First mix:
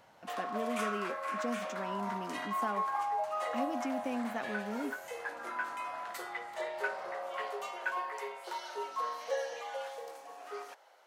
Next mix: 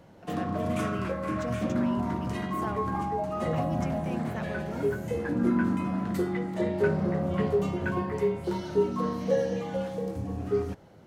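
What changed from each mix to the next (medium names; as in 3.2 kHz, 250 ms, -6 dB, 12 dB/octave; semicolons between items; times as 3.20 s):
background: remove high-pass 680 Hz 24 dB/octave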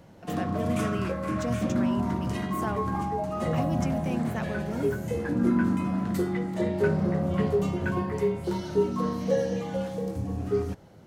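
speech +3.5 dB; master: add tone controls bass +3 dB, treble +4 dB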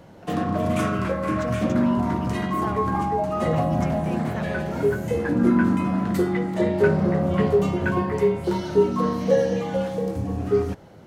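background +6.5 dB; master: add tone controls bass -3 dB, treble -4 dB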